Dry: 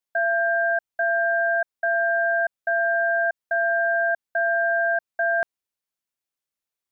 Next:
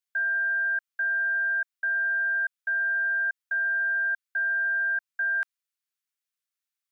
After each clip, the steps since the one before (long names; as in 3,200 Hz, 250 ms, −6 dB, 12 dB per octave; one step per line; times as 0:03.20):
inverse Chebyshev high-pass filter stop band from 580 Hz, stop band 40 dB
level −1 dB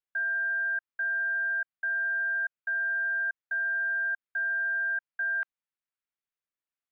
high-frequency loss of the air 410 metres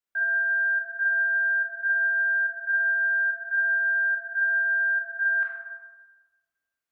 convolution reverb RT60 1.3 s, pre-delay 13 ms, DRR −3.5 dB